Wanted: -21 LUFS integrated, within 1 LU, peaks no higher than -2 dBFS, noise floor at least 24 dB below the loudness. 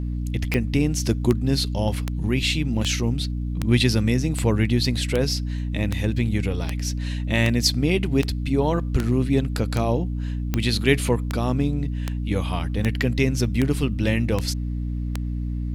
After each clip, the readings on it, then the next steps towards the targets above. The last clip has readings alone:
clicks 20; hum 60 Hz; harmonics up to 300 Hz; hum level -24 dBFS; loudness -23.5 LUFS; peak -3.5 dBFS; loudness target -21.0 LUFS
-> de-click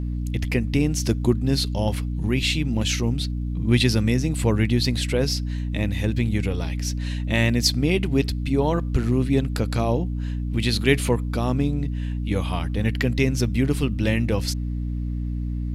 clicks 0; hum 60 Hz; harmonics up to 300 Hz; hum level -24 dBFS
-> notches 60/120/180/240/300 Hz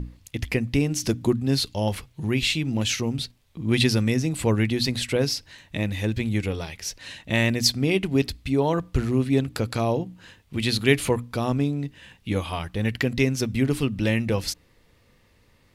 hum none; loudness -24.5 LUFS; peak -4.5 dBFS; loudness target -21.0 LUFS
-> gain +3.5 dB; limiter -2 dBFS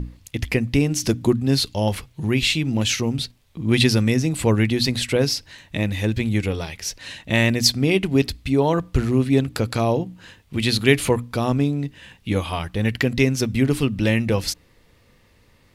loudness -21.0 LUFS; peak -2.0 dBFS; noise floor -57 dBFS

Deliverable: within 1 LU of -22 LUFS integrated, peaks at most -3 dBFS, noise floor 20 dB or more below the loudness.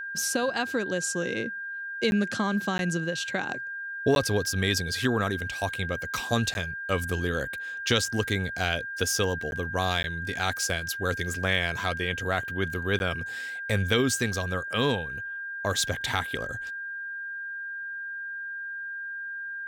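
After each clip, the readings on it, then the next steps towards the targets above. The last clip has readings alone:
dropouts 7; longest dropout 11 ms; steady tone 1600 Hz; tone level -33 dBFS; loudness -28.5 LUFS; peak -9.5 dBFS; loudness target -22.0 LUFS
-> interpolate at 2.11/2.78/4.15/6.54/9.51/10.03/12.99, 11 ms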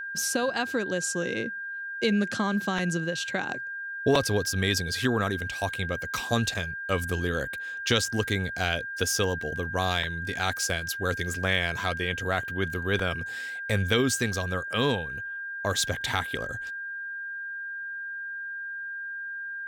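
dropouts 0; steady tone 1600 Hz; tone level -33 dBFS
-> notch 1600 Hz, Q 30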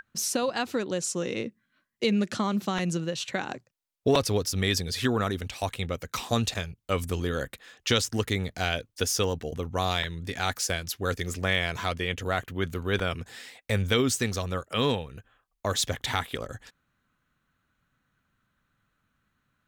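steady tone none; loudness -28.5 LUFS; peak -10.0 dBFS; loudness target -22.0 LUFS
-> gain +6.5 dB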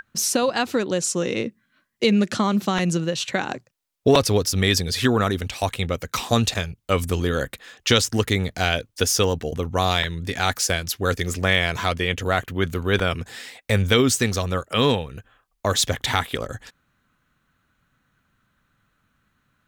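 loudness -22.5 LUFS; peak -3.5 dBFS; noise floor -70 dBFS

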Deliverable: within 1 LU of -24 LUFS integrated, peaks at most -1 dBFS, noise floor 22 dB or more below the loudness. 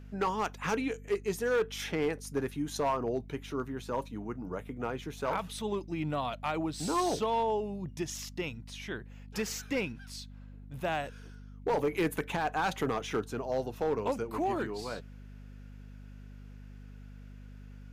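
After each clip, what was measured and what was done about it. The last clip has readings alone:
clipped 1.0%; flat tops at -23.5 dBFS; hum 50 Hz; harmonics up to 250 Hz; hum level -46 dBFS; loudness -34.0 LUFS; peak -23.5 dBFS; loudness target -24.0 LUFS
-> clip repair -23.5 dBFS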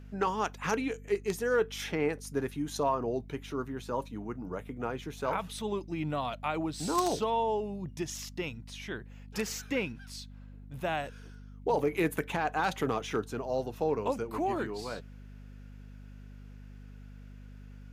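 clipped 0.0%; hum 50 Hz; harmonics up to 250 Hz; hum level -45 dBFS
-> de-hum 50 Hz, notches 5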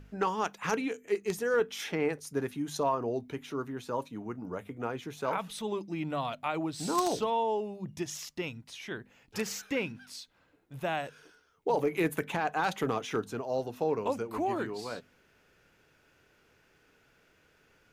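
hum none; loudness -33.5 LUFS; peak -14.5 dBFS; loudness target -24.0 LUFS
-> gain +9.5 dB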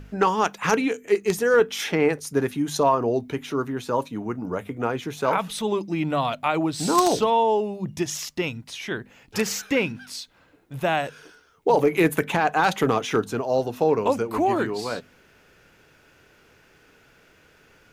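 loudness -24.0 LUFS; peak -5.0 dBFS; noise floor -57 dBFS

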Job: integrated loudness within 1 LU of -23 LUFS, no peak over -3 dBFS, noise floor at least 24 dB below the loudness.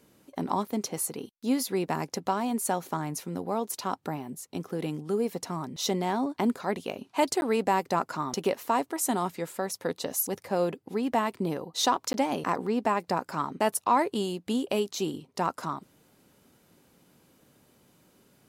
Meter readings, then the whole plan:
dropouts 2; longest dropout 11 ms; loudness -30.0 LUFS; peak -12.0 dBFS; loudness target -23.0 LUFS
-> interpolate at 7.41/12.13, 11 ms; gain +7 dB

